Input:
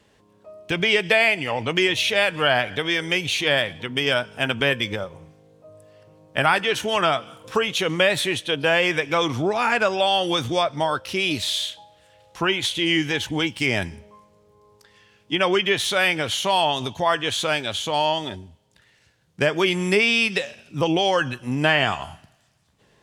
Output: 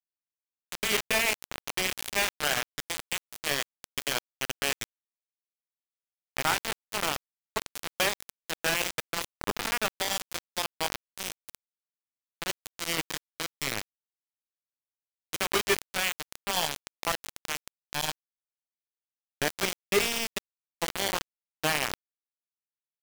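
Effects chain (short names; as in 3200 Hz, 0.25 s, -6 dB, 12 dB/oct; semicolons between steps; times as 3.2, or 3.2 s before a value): resonator 400 Hz, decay 0.5 s, mix 70%; FDN reverb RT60 2.5 s, low-frequency decay 0.85×, high-frequency decay 0.3×, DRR 9 dB; bit-crush 4-bit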